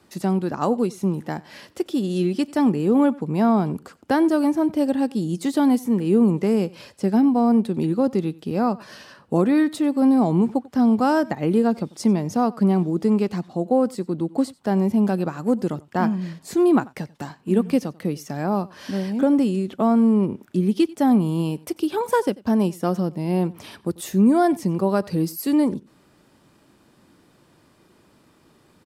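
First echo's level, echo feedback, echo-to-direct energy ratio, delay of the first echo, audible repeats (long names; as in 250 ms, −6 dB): −22.5 dB, repeats not evenly spaced, −22.5 dB, 92 ms, 1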